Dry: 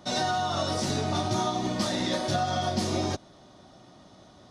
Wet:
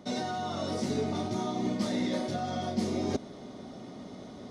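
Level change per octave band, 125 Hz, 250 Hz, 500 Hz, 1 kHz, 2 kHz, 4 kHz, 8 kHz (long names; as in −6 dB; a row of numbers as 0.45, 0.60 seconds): −5.5, 0.0, −3.0, −7.0, −7.5, −9.0, −9.0 decibels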